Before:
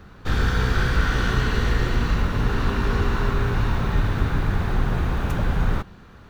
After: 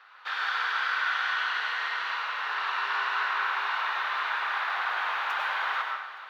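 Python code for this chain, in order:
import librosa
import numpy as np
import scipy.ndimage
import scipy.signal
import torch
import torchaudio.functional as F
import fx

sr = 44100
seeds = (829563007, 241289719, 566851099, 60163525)

y = scipy.signal.sosfilt(scipy.signal.butter(4, 910.0, 'highpass', fs=sr, output='sos'), x)
y = fx.high_shelf(y, sr, hz=3000.0, db=12.0)
y = fx.rider(y, sr, range_db=10, speed_s=2.0)
y = fx.air_absorb(y, sr, metres=360.0)
y = fx.echo_feedback(y, sr, ms=433, feedback_pct=53, wet_db=-16.5)
y = fx.rev_plate(y, sr, seeds[0], rt60_s=0.92, hf_ratio=0.75, predelay_ms=85, drr_db=1.0)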